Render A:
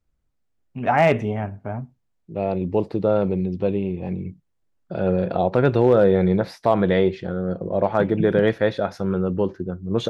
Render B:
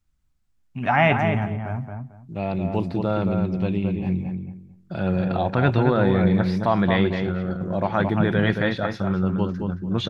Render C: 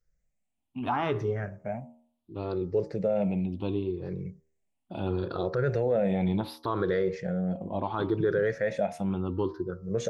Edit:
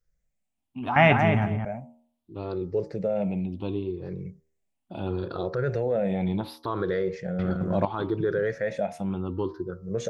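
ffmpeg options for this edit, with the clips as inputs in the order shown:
-filter_complex "[1:a]asplit=2[s0][s1];[2:a]asplit=3[s2][s3][s4];[s2]atrim=end=0.962[s5];[s0]atrim=start=0.958:end=1.652[s6];[s3]atrim=start=1.648:end=7.392[s7];[s1]atrim=start=7.388:end=7.852[s8];[s4]atrim=start=7.848[s9];[s5][s6]acrossfade=d=0.004:c1=hsin:c2=hsin[s10];[s10][s7]acrossfade=d=0.004:c1=hsin:c2=hsin[s11];[s11][s8]acrossfade=d=0.004:c1=hsin:c2=hsin[s12];[s12][s9]acrossfade=d=0.004:c1=hsin:c2=hsin"

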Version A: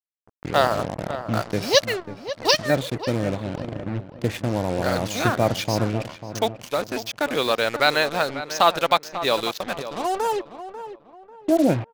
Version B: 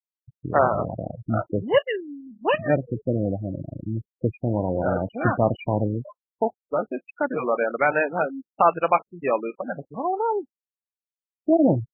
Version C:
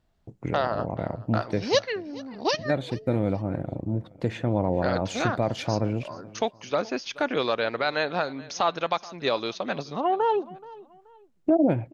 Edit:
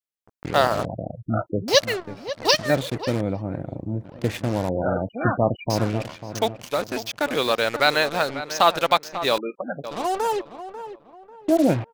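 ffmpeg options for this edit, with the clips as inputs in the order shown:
-filter_complex "[1:a]asplit=3[s0][s1][s2];[0:a]asplit=5[s3][s4][s5][s6][s7];[s3]atrim=end=0.852[s8];[s0]atrim=start=0.848:end=1.682[s9];[s4]atrim=start=1.678:end=3.212[s10];[2:a]atrim=start=3.208:end=4.052[s11];[s5]atrim=start=4.048:end=4.692[s12];[s1]atrim=start=4.688:end=5.702[s13];[s6]atrim=start=5.698:end=9.382[s14];[s2]atrim=start=9.378:end=9.842[s15];[s7]atrim=start=9.838[s16];[s8][s9]acrossfade=d=0.004:c1=hsin:c2=hsin[s17];[s17][s10]acrossfade=d=0.004:c1=hsin:c2=hsin[s18];[s18][s11]acrossfade=d=0.004:c1=hsin:c2=hsin[s19];[s19][s12]acrossfade=d=0.004:c1=hsin:c2=hsin[s20];[s20][s13]acrossfade=d=0.004:c1=hsin:c2=hsin[s21];[s21][s14]acrossfade=d=0.004:c1=hsin:c2=hsin[s22];[s22][s15]acrossfade=d=0.004:c1=hsin:c2=hsin[s23];[s23][s16]acrossfade=d=0.004:c1=hsin:c2=hsin"

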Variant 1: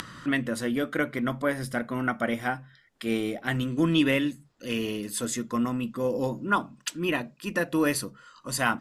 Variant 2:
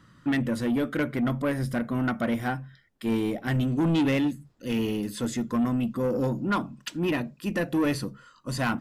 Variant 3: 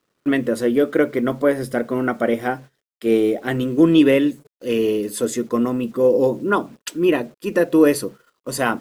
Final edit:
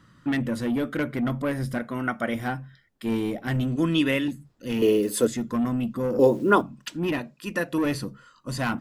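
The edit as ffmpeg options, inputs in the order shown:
-filter_complex "[0:a]asplit=3[s0][s1][s2];[2:a]asplit=2[s3][s4];[1:a]asplit=6[s5][s6][s7][s8][s9][s10];[s5]atrim=end=1.782[s11];[s0]atrim=start=1.778:end=2.352[s12];[s6]atrim=start=2.348:end=3.762[s13];[s1]atrim=start=3.758:end=4.282[s14];[s7]atrim=start=4.278:end=4.822[s15];[s3]atrim=start=4.818:end=5.272[s16];[s8]atrim=start=5.268:end=6.192[s17];[s4]atrim=start=6.188:end=6.612[s18];[s9]atrim=start=6.608:end=7.192[s19];[s2]atrim=start=7.188:end=7.782[s20];[s10]atrim=start=7.778[s21];[s11][s12]acrossfade=d=0.004:c1=hsin:c2=hsin[s22];[s22][s13]acrossfade=d=0.004:c1=hsin:c2=hsin[s23];[s23][s14]acrossfade=d=0.004:c1=hsin:c2=hsin[s24];[s24][s15]acrossfade=d=0.004:c1=hsin:c2=hsin[s25];[s25][s16]acrossfade=d=0.004:c1=hsin:c2=hsin[s26];[s26][s17]acrossfade=d=0.004:c1=hsin:c2=hsin[s27];[s27][s18]acrossfade=d=0.004:c1=hsin:c2=hsin[s28];[s28][s19]acrossfade=d=0.004:c1=hsin:c2=hsin[s29];[s29][s20]acrossfade=d=0.004:c1=hsin:c2=hsin[s30];[s30][s21]acrossfade=d=0.004:c1=hsin:c2=hsin"

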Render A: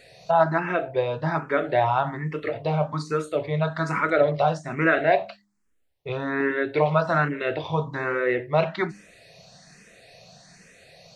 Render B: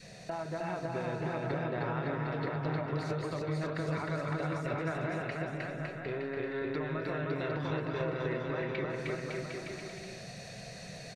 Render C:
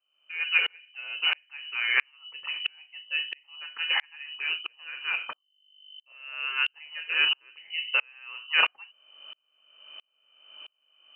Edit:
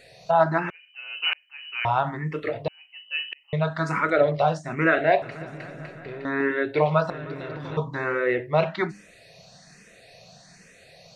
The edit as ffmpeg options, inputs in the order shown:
-filter_complex "[2:a]asplit=2[s0][s1];[1:a]asplit=2[s2][s3];[0:a]asplit=5[s4][s5][s6][s7][s8];[s4]atrim=end=0.702[s9];[s0]atrim=start=0.698:end=1.852[s10];[s5]atrim=start=1.848:end=2.682[s11];[s1]atrim=start=2.678:end=3.532[s12];[s6]atrim=start=3.528:end=5.222[s13];[s2]atrim=start=5.218:end=6.252[s14];[s7]atrim=start=6.248:end=7.102[s15];[s3]atrim=start=7.098:end=7.772[s16];[s8]atrim=start=7.768[s17];[s9][s10]acrossfade=d=0.004:c1=hsin:c2=hsin[s18];[s18][s11]acrossfade=d=0.004:c1=hsin:c2=hsin[s19];[s19][s12]acrossfade=d=0.004:c1=hsin:c2=hsin[s20];[s20][s13]acrossfade=d=0.004:c1=hsin:c2=hsin[s21];[s21][s14]acrossfade=d=0.004:c1=hsin:c2=hsin[s22];[s22][s15]acrossfade=d=0.004:c1=hsin:c2=hsin[s23];[s23][s16]acrossfade=d=0.004:c1=hsin:c2=hsin[s24];[s24][s17]acrossfade=d=0.004:c1=hsin:c2=hsin"

